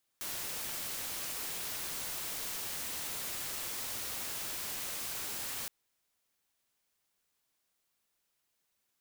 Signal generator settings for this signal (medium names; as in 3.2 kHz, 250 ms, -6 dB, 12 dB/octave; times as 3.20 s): noise white, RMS -39 dBFS 5.47 s